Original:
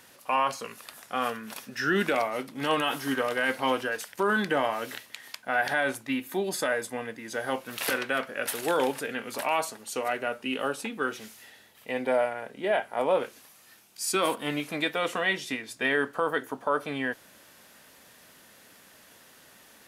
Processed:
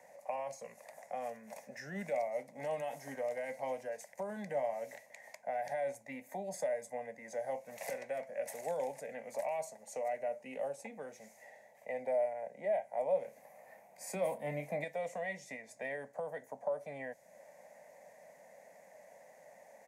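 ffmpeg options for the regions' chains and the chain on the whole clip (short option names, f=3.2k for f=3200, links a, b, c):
-filter_complex "[0:a]asettb=1/sr,asplit=3[a][b][c];[a]atrim=end=13.254[d];[b]atrim=start=13.25:end=14.84,asetpts=PTS-STARTPTS,afade=t=in:d=0.004:c=qsin,afade=t=out:st=1.586:d=0.004:c=qsin,equalizer=f=6.4k:w=0.66:g=-12,acontrast=80,asplit=2[e][f];[f]adelay=28,volume=-11dB[g];[e][g]amix=inputs=2:normalize=0,atrim=end_sample=70119[h];[c]atrim=start=14.836[i];[d][h]acrossfade=d=0.004:c1=hsin:c2=qsin[j];[j][i]acrossfade=d=0.004:c1=qsin:c2=hsin,acrossover=split=370 3300:gain=0.158 1 0.251[k][l][m];[k][l][m]amix=inputs=3:normalize=0,acrossover=split=210|3000[n][o][p];[o]acompressor=threshold=-46dB:ratio=2.5[q];[n][q][p]amix=inputs=3:normalize=0,firequalizer=gain_entry='entry(110,0);entry(170,9);entry(340,-12);entry(570,12);entry(820,4);entry(1300,-21);entry(2000,0);entry(3000,-22);entry(6500,3);entry(11000,-5)':delay=0.05:min_phase=1,volume=-1dB"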